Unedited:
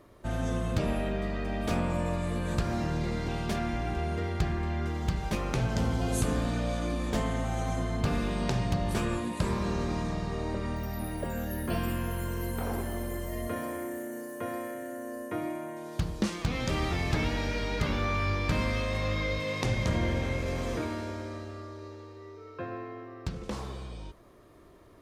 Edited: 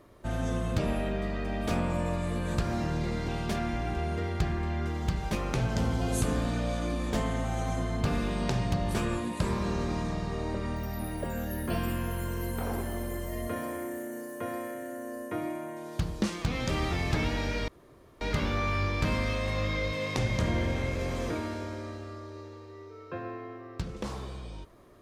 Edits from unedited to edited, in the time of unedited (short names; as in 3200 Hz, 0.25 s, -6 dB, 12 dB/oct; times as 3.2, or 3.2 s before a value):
17.68 insert room tone 0.53 s